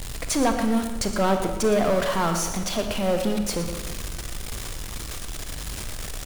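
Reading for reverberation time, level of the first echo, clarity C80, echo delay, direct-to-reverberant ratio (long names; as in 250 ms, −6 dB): 1.3 s, −11.5 dB, 7.5 dB, 117 ms, 5.0 dB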